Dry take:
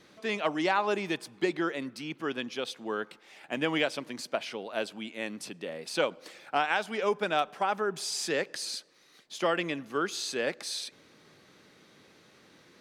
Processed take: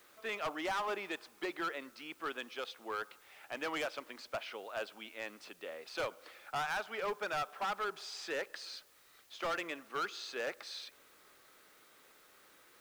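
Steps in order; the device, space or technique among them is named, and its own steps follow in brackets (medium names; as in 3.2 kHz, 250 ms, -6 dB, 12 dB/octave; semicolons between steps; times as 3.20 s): drive-through speaker (band-pass 450–3800 Hz; peaking EQ 1.3 kHz +6 dB 0.42 oct; hard clipper -27 dBFS, distortion -8 dB; white noise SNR 25 dB); trim -5 dB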